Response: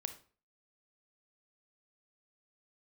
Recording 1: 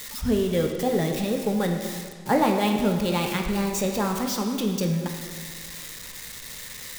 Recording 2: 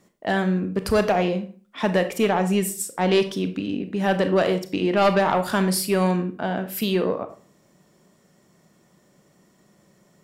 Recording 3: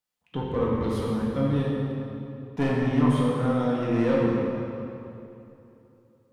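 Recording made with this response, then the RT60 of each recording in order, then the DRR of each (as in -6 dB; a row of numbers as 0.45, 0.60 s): 2; 1.8, 0.40, 2.9 s; 2.5, 8.5, -6.0 dB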